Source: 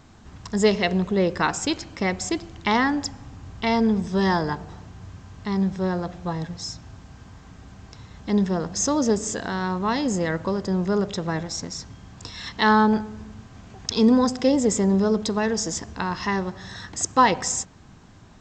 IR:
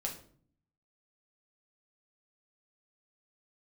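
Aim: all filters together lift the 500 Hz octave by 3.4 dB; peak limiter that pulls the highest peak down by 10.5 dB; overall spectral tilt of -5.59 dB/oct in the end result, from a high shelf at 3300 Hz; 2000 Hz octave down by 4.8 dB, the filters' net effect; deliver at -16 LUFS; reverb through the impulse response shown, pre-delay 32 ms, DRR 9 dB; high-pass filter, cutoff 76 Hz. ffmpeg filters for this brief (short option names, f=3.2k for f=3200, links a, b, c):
-filter_complex "[0:a]highpass=76,equalizer=f=500:t=o:g=4.5,equalizer=f=2k:t=o:g=-4.5,highshelf=f=3.3k:g=-6,alimiter=limit=-16dB:level=0:latency=1,asplit=2[a][b];[1:a]atrim=start_sample=2205,adelay=32[c];[b][c]afir=irnorm=-1:irlink=0,volume=-10dB[d];[a][d]amix=inputs=2:normalize=0,volume=9.5dB"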